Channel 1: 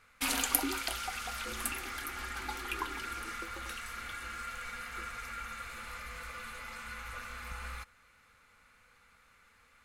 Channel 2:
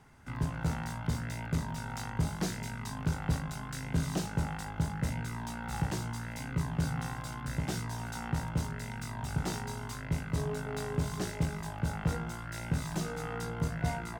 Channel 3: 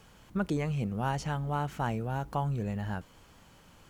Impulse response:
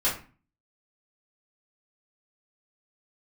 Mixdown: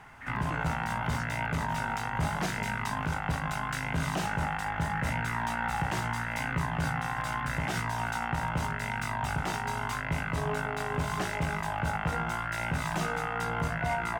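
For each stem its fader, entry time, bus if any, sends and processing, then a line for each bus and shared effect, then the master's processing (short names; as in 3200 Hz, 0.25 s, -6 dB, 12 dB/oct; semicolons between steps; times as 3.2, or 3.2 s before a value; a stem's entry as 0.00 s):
+2.5 dB, 0.00 s, no send, ladder low-pass 1900 Hz, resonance 90%; auto duck -12 dB, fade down 0.35 s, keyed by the third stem
+2.5 dB, 0.00 s, no send, band shelf 1400 Hz +9.5 dB 2.6 oct
-11.0 dB, 0.00 s, no send, sustainer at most 140 dB/s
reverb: off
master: limiter -20.5 dBFS, peak gain reduction 7.5 dB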